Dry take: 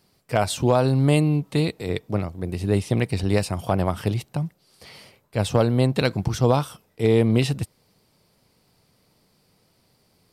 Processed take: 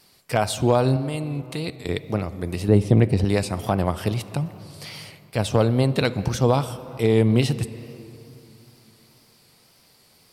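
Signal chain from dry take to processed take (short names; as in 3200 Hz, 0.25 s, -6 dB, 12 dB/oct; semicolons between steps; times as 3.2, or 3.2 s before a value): 0.96–1.89 level quantiser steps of 14 dB; on a send at -14.5 dB: reverb RT60 2.5 s, pre-delay 3 ms; on the sum: wow and flutter 51 cents; 2.68–3.25 tilt shelf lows +6 dB, about 1100 Hz; mismatched tape noise reduction encoder only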